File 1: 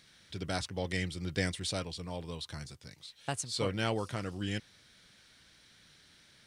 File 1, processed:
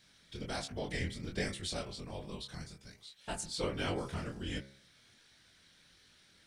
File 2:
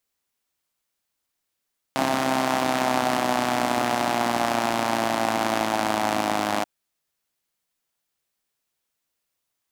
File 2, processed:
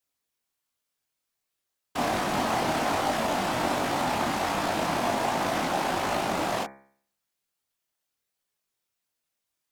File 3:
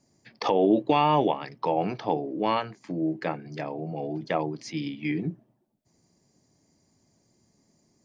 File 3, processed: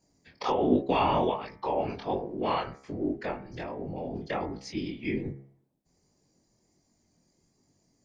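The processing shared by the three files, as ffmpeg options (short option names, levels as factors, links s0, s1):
-af "afftfilt=real='hypot(re,im)*cos(2*PI*random(0))':imag='hypot(re,im)*sin(2*PI*random(1))':win_size=512:overlap=0.75,flanger=delay=20:depth=5.3:speed=1.3,bandreject=f=67.71:t=h:w=4,bandreject=f=135.42:t=h:w=4,bandreject=f=203.13:t=h:w=4,bandreject=f=270.84:t=h:w=4,bandreject=f=338.55:t=h:w=4,bandreject=f=406.26:t=h:w=4,bandreject=f=473.97:t=h:w=4,bandreject=f=541.68:t=h:w=4,bandreject=f=609.39:t=h:w=4,bandreject=f=677.1:t=h:w=4,bandreject=f=744.81:t=h:w=4,bandreject=f=812.52:t=h:w=4,bandreject=f=880.23:t=h:w=4,bandreject=f=947.94:t=h:w=4,bandreject=f=1015.65:t=h:w=4,bandreject=f=1083.36:t=h:w=4,bandreject=f=1151.07:t=h:w=4,bandreject=f=1218.78:t=h:w=4,bandreject=f=1286.49:t=h:w=4,bandreject=f=1354.2:t=h:w=4,bandreject=f=1421.91:t=h:w=4,bandreject=f=1489.62:t=h:w=4,bandreject=f=1557.33:t=h:w=4,bandreject=f=1625.04:t=h:w=4,bandreject=f=1692.75:t=h:w=4,bandreject=f=1760.46:t=h:w=4,bandreject=f=1828.17:t=h:w=4,bandreject=f=1895.88:t=h:w=4,bandreject=f=1963.59:t=h:w=4,bandreject=f=2031.3:t=h:w=4,bandreject=f=2099.01:t=h:w=4,bandreject=f=2166.72:t=h:w=4,bandreject=f=2234.43:t=h:w=4,bandreject=f=2302.14:t=h:w=4,bandreject=f=2369.85:t=h:w=4,volume=2"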